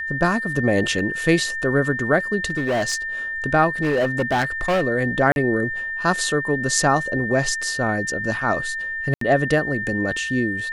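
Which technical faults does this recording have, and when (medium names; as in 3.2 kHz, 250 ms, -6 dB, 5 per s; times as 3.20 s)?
whine 1.8 kHz -25 dBFS
0.99 s: dropout 3.1 ms
2.50–2.96 s: clipped -18 dBFS
3.82–4.83 s: clipped -16 dBFS
5.32–5.36 s: dropout 41 ms
9.14–9.21 s: dropout 73 ms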